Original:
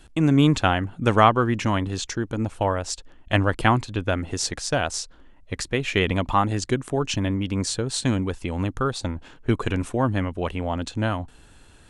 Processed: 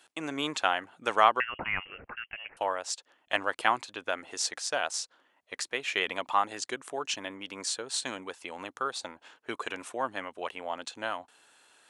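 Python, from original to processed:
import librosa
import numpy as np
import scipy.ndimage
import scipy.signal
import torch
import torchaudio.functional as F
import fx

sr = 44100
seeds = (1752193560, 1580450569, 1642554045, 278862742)

y = scipy.signal.sosfilt(scipy.signal.butter(2, 630.0, 'highpass', fs=sr, output='sos'), x)
y = fx.freq_invert(y, sr, carrier_hz=3100, at=(1.4, 2.57))
y = y * 10.0 ** (-4.0 / 20.0)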